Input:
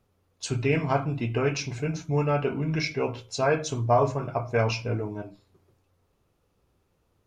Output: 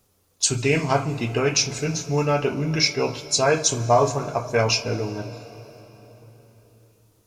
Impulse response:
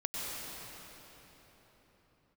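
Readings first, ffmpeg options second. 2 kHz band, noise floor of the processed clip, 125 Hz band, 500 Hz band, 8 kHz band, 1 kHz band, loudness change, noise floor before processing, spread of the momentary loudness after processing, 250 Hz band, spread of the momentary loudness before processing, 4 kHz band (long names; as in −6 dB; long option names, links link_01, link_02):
+5.5 dB, −65 dBFS, +2.0 dB, +4.0 dB, +16.0 dB, +4.0 dB, +5.0 dB, −71 dBFS, 8 LU, +3.0 dB, 8 LU, +12.5 dB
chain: -filter_complex "[0:a]bass=frequency=250:gain=-2,treble=frequency=4000:gain=14,asplit=2[link_01][link_02];[1:a]atrim=start_sample=2205,adelay=38[link_03];[link_02][link_03]afir=irnorm=-1:irlink=0,volume=-19.5dB[link_04];[link_01][link_04]amix=inputs=2:normalize=0,volume=4dB"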